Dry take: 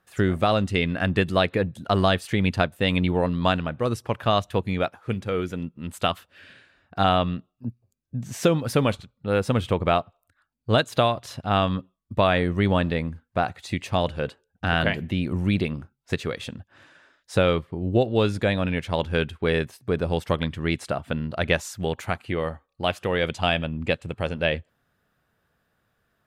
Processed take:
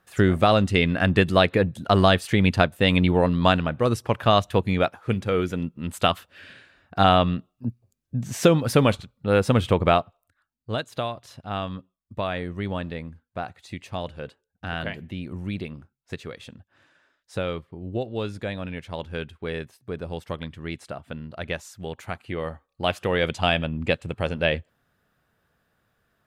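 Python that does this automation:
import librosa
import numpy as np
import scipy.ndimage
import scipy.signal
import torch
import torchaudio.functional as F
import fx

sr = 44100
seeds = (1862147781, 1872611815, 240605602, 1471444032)

y = fx.gain(x, sr, db=fx.line((9.87, 3.0), (10.73, -8.0), (21.77, -8.0), (22.95, 1.0)))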